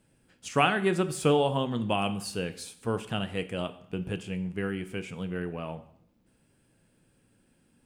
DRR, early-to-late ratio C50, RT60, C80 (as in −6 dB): 10.0 dB, 15.0 dB, 0.70 s, 18.0 dB